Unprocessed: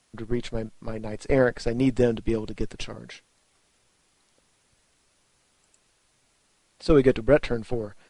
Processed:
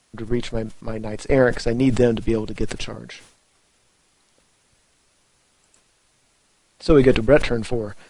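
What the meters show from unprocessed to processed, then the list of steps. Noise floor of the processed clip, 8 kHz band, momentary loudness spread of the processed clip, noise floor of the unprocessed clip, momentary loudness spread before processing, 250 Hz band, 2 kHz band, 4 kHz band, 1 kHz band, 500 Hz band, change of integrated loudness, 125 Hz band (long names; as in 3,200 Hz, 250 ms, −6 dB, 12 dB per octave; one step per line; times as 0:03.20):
−63 dBFS, +7.0 dB, 16 LU, −67 dBFS, 16 LU, +4.5 dB, +5.5 dB, +6.5 dB, +5.0 dB, +4.5 dB, +4.5 dB, +5.0 dB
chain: level that may fall only so fast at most 100 dB per second
level +4 dB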